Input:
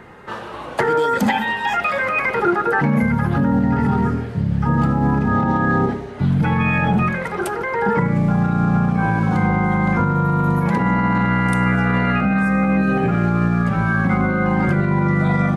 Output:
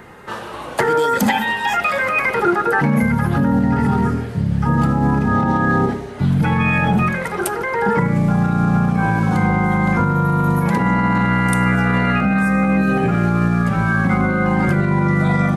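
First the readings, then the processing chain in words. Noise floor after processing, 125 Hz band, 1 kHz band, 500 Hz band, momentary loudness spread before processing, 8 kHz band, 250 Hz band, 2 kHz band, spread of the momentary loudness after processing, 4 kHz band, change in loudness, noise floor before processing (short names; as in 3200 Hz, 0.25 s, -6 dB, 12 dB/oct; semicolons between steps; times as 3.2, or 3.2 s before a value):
-30 dBFS, +1.0 dB, +1.5 dB, +1.0 dB, 4 LU, n/a, +1.0 dB, +1.5 dB, 4 LU, +3.0 dB, +1.0 dB, -31 dBFS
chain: high shelf 6900 Hz +12 dB; gain +1 dB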